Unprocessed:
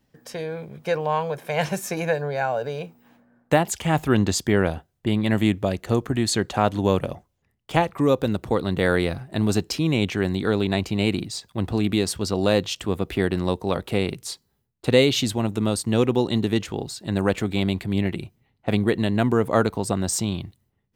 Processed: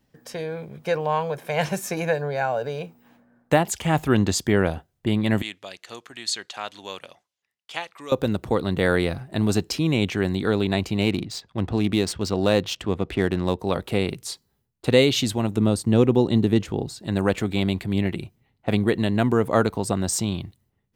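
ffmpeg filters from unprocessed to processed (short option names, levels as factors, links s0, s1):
-filter_complex "[0:a]asettb=1/sr,asplit=3[s0][s1][s2];[s0]atrim=end=5.424[s3];[s1]atrim=start=5.42:end=8.12,asetpts=PTS-STARTPTS,afade=t=in:d=0.004:c=qsin,afade=t=out:st=2.696:d=0.004:c=qsin,bandpass=f=4200:t=q:w=0.79[s4];[s2]atrim=start=8.116[s5];[s3][s4]acrossfade=d=0.004:c1=hsin:c2=qsin[s6];[s6][s5]acrossfade=d=0.004:c1=qsin:c2=hsin,asettb=1/sr,asplit=3[s7][s8][s9];[s7]atrim=end=11.014[s10];[s8]atrim=start=11.01:end=13.59,asetpts=PTS-STARTPTS,afade=t=in:d=0.004:c=qsin,afade=t=out:st=2.576:d=0.004:c=qsin,adynamicsmooth=sensitivity=7.5:basefreq=3600[s11];[s9]atrim=start=13.586[s12];[s10][s11]acrossfade=d=0.004:c1=hsin:c2=qsin[s13];[s13][s12]acrossfade=d=0.004:c1=qsin:c2=hsin,asettb=1/sr,asplit=3[s14][s15][s16];[s14]atrim=end=15.564[s17];[s15]atrim=start=15.56:end=17.03,asetpts=PTS-STARTPTS,afade=t=in:d=0.004:c=qsin,afade=t=out:st=1.466:d=0.004:c=qsin,tiltshelf=f=730:g=4[s18];[s16]atrim=start=17.026[s19];[s17][s18]acrossfade=d=0.004:c1=hsin:c2=qsin[s20];[s20][s19]acrossfade=d=0.004:c1=qsin:c2=hsin"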